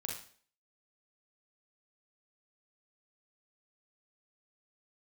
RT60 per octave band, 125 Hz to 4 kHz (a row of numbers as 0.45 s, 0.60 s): 0.45 s, 0.50 s, 0.50 s, 0.45 s, 0.45 s, 0.45 s